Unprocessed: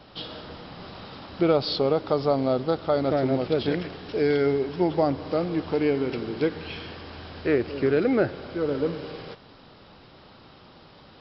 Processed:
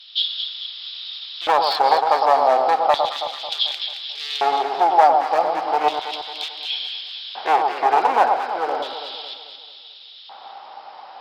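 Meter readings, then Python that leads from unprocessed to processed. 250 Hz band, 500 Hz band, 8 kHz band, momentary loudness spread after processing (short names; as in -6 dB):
-13.0 dB, +0.5 dB, n/a, 23 LU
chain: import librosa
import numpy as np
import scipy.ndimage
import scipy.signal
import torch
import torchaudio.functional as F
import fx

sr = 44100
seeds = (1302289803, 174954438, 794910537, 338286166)

p1 = np.minimum(x, 2.0 * 10.0 ** (-22.0 / 20.0) - x)
p2 = fx.cheby_harmonics(p1, sr, harmonics=(2,), levels_db=(-19,), full_scale_db=-9.0)
p3 = fx.filter_lfo_highpass(p2, sr, shape='square', hz=0.34, low_hz=790.0, high_hz=3500.0, q=6.8)
p4 = p3 + fx.echo_alternate(p3, sr, ms=110, hz=1200.0, feedback_pct=68, wet_db=-4.0, dry=0)
y = F.gain(torch.from_numpy(p4), 4.0).numpy()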